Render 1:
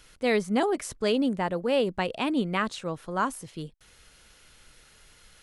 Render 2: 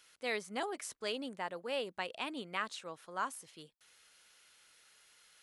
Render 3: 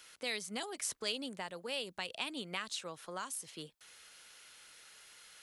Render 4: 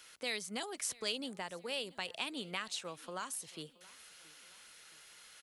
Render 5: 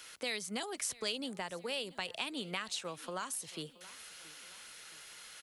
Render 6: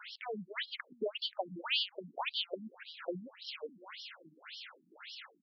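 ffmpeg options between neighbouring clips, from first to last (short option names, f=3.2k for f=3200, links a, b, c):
-af "highpass=f=1k:p=1,volume=-6.5dB"
-filter_complex "[0:a]acrossover=split=140|3000[a][b][c];[b]acompressor=threshold=-48dB:ratio=6[d];[a][d][c]amix=inputs=3:normalize=0,volume=7dB"
-af "aecho=1:1:674|1348|2022:0.075|0.0345|0.0159"
-filter_complex "[0:a]acrossover=split=120[a][b];[b]acompressor=threshold=-47dB:ratio=1.5[c];[a][c]amix=inputs=2:normalize=0,volume=5.5dB"
-af "afftfilt=real='re*between(b*sr/1024,210*pow(4100/210,0.5+0.5*sin(2*PI*1.8*pts/sr))/1.41,210*pow(4100/210,0.5+0.5*sin(2*PI*1.8*pts/sr))*1.41)':imag='im*between(b*sr/1024,210*pow(4100/210,0.5+0.5*sin(2*PI*1.8*pts/sr))/1.41,210*pow(4100/210,0.5+0.5*sin(2*PI*1.8*pts/sr))*1.41)':win_size=1024:overlap=0.75,volume=9dB"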